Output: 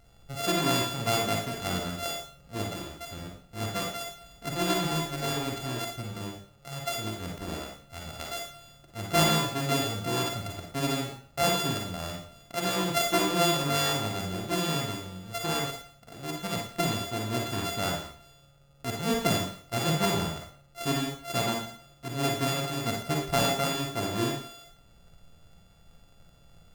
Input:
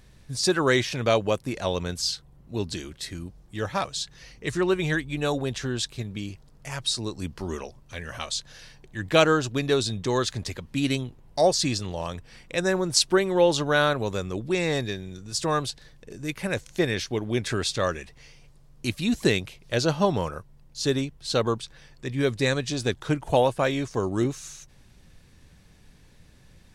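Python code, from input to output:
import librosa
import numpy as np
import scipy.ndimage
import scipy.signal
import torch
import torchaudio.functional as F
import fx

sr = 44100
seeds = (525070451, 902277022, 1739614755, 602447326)

y = np.r_[np.sort(x[:len(x) // 64 * 64].reshape(-1, 64), axis=1).ravel(), x[len(x) // 64 * 64:]]
y = fx.rev_schroeder(y, sr, rt60_s=0.47, comb_ms=38, drr_db=0.0)
y = F.gain(torch.from_numpy(y), -5.5).numpy()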